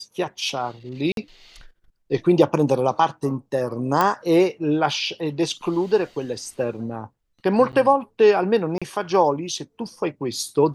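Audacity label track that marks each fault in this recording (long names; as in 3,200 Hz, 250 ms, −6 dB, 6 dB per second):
1.120000	1.170000	drop-out 52 ms
4.010000	4.010000	click −6 dBFS
7.720000	7.730000	drop-out 9.6 ms
8.780000	8.820000	drop-out 36 ms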